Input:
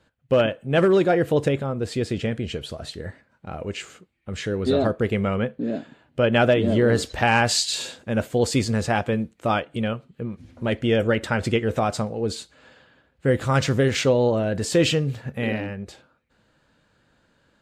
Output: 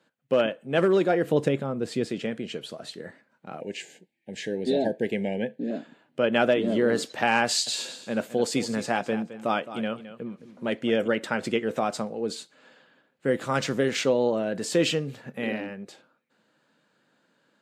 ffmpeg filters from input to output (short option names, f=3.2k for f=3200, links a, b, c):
-filter_complex "[0:a]asettb=1/sr,asplit=3[a][b][c];[a]atrim=end=1.244[d];[b]atrim=start=1.24:end=2.08,asetpts=PTS-STARTPTS,afade=t=in:d=0.004:c=qsin,afade=t=out:st=0.836:d=0.004:c=qsin,lowshelf=f=160:g=10.5[e];[c]atrim=start=2.076[f];[d][e]acrossfade=d=0.004:c1=hsin:c2=qsin[g];[g][f]acrossfade=d=0.004:c1=qsin:c2=hsin,asettb=1/sr,asplit=3[h][i][j];[h]atrim=end=3.604[k];[i]atrim=start=3.6:end=5.71,asetpts=PTS-STARTPTS,afade=t=in:d=0.004:c=qsin,afade=t=out:st=2.106:d=0.004:c=qsin,asuperstop=centerf=1200:order=20:qfactor=1.9[l];[j]atrim=start=5.706[m];[k][l]acrossfade=d=0.004:c1=hsin:c2=qsin[n];[n][m]acrossfade=d=0.004:c1=qsin:c2=hsin,asettb=1/sr,asplit=3[o][p][q];[o]atrim=end=7.454[r];[p]atrim=start=7.45:end=11.08,asetpts=PTS-STARTPTS,afade=t=in:d=0.004:c=qsin,afade=t=out:st=3.626:d=0.004:c=qsin,aecho=1:1:215|430:0.211|0.038,atrim=end_sample=160083[s];[q]atrim=start=11.076[t];[r][s]acrossfade=d=0.004:c1=hsin:c2=qsin[u];[u][t]acrossfade=d=0.004:c1=qsin:c2=hsin,highpass=f=170:w=0.5412,highpass=f=170:w=1.3066,volume=-3.5dB"